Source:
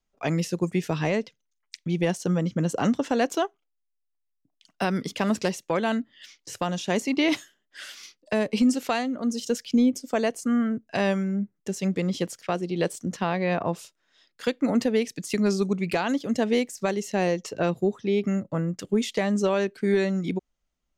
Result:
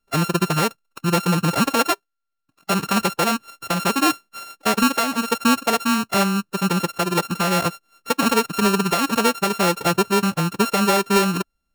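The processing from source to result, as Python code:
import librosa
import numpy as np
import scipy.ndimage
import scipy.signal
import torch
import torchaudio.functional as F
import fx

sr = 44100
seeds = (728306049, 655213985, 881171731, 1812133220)

y = np.r_[np.sort(x[:len(x) // 32 * 32].reshape(-1, 32), axis=1).ravel(), x[len(x) // 32 * 32:]]
y = fx.dynamic_eq(y, sr, hz=250.0, q=3.2, threshold_db=-37.0, ratio=4.0, max_db=-4)
y = fx.stretch_vocoder(y, sr, factor=0.56)
y = F.gain(torch.from_numpy(y), 6.5).numpy()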